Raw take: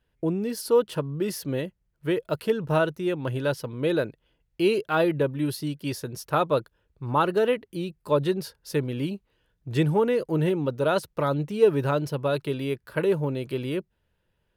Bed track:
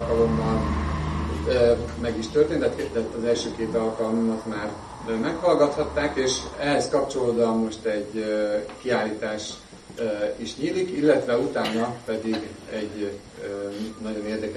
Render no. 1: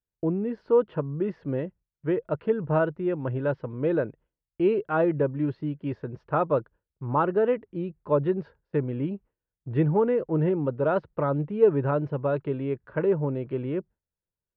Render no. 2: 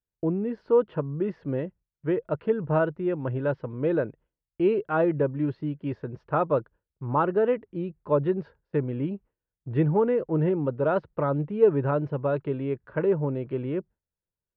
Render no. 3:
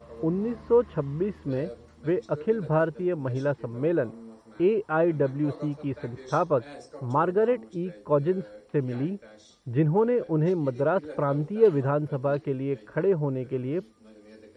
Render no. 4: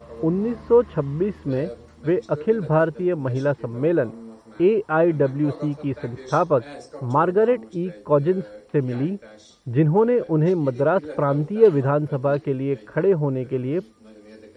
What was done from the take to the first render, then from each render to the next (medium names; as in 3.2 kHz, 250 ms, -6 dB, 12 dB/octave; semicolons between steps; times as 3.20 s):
Bessel low-pass 1.4 kHz, order 4; gate with hold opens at -49 dBFS
no audible change
add bed track -21.5 dB
trim +5 dB